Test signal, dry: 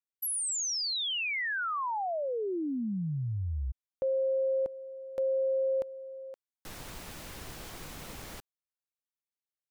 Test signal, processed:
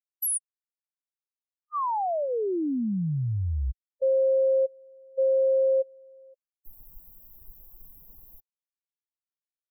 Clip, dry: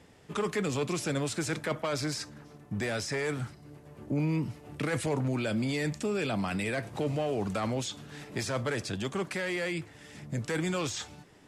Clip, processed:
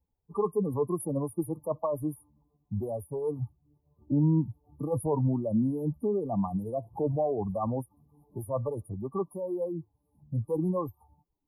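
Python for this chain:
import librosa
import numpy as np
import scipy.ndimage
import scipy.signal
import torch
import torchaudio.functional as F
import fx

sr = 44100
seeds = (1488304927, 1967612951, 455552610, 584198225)

y = fx.bin_expand(x, sr, power=2.0)
y = fx.brickwall_bandstop(y, sr, low_hz=1200.0, high_hz=9500.0)
y = y * librosa.db_to_amplitude(7.0)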